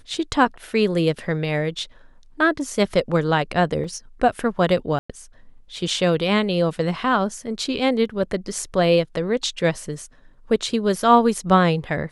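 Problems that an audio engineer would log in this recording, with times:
3.84 s: dropout 4.1 ms
4.99–5.09 s: dropout 105 ms

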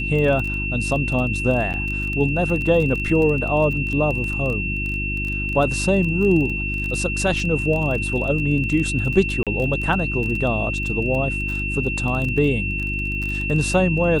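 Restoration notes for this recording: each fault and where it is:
crackle 18 per s -25 dBFS
hum 50 Hz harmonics 7 -27 dBFS
whine 2.7 kHz -25 dBFS
1.73–1.74 s: dropout 8.7 ms
9.43–9.47 s: dropout 37 ms

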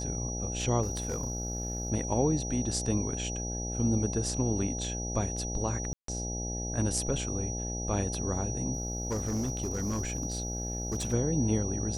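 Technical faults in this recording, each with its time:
buzz 60 Hz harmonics 14 -36 dBFS
whine 5.8 kHz -37 dBFS
0.82–1.90 s: clipped -28 dBFS
5.93–6.08 s: dropout 153 ms
8.73–11.14 s: clipped -27.5 dBFS

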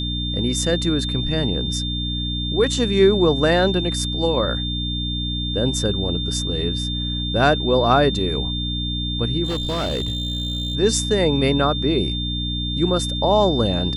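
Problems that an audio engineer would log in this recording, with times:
hum 60 Hz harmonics 5 -26 dBFS
whine 3.6 kHz -26 dBFS
9.44–10.75 s: clipped -19.5 dBFS

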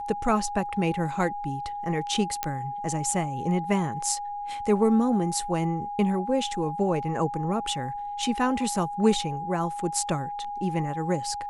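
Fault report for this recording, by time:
whine 820 Hz -31 dBFS
2.43 s: pop -10 dBFS

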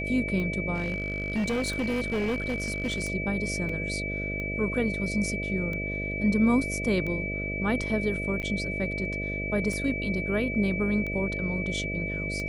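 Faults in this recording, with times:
buzz 50 Hz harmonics 13 -34 dBFS
tick 45 rpm -23 dBFS
whine 2.3 kHz -32 dBFS
0.74–3.04 s: clipped -24 dBFS
3.69 s: dropout 3.6 ms
8.42–8.43 s: dropout 8.8 ms

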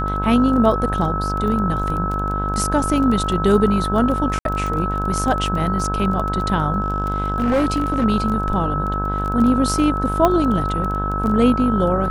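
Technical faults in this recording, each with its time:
buzz 50 Hz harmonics 33 -24 dBFS
crackle 13 per s -24 dBFS
whine 1.3 kHz -23 dBFS
4.39–4.45 s: dropout 62 ms
6.80–8.05 s: clipped -13.5 dBFS
10.25 s: pop -4 dBFS

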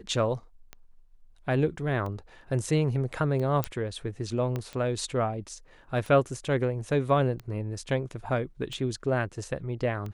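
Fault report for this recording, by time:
tick 45 rpm -25 dBFS
3.64 s: pop -12 dBFS
4.56 s: pop -19 dBFS

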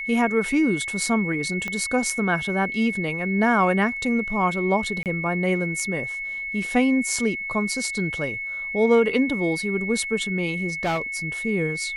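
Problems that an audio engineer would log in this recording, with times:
whine 2.2 kHz -28 dBFS
1.68 s: pop -15 dBFS
5.03–5.06 s: dropout 28 ms
10.83–11.02 s: clipped -20 dBFS

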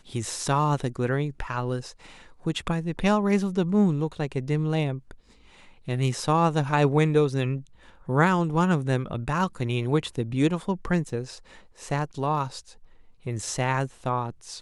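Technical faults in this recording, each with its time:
11.09 s: dropout 2.6 ms

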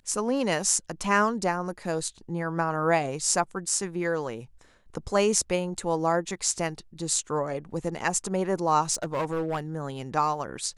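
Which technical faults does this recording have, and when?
8.93–9.60 s: clipped -24 dBFS

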